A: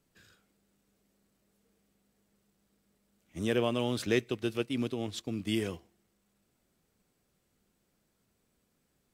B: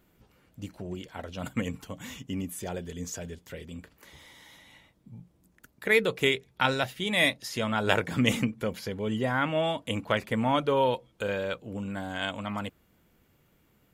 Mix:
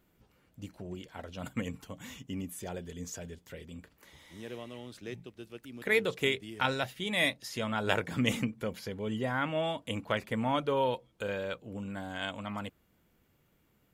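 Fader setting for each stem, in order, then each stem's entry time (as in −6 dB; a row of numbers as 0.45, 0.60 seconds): −14.0, −4.5 decibels; 0.95, 0.00 seconds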